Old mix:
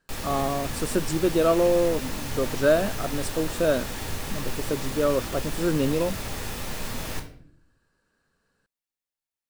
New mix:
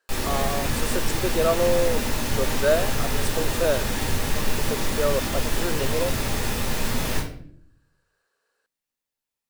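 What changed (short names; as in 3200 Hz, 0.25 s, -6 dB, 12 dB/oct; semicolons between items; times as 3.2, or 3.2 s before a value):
speech: add Chebyshev high-pass 430 Hz, order 3; background: send +9.5 dB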